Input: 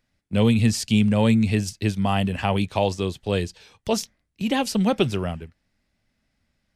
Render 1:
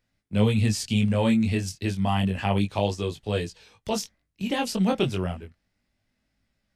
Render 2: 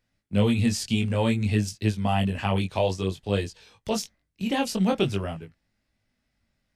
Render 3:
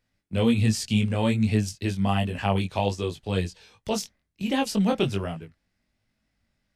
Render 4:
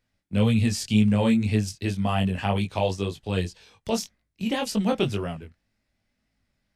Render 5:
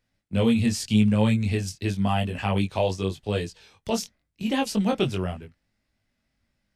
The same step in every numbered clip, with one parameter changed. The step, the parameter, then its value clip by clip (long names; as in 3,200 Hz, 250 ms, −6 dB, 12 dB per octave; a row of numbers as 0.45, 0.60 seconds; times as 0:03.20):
chorus effect, speed: 0.29, 0.53, 1.3, 1.9, 0.87 Hertz